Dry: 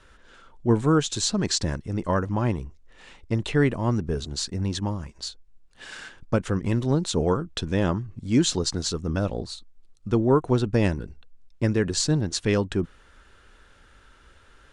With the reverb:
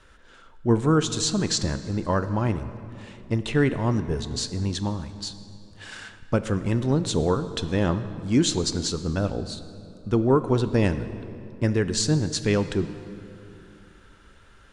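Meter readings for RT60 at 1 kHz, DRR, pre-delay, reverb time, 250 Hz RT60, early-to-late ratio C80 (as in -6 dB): 2.6 s, 11.0 dB, 14 ms, 2.7 s, 3.0 s, 12.5 dB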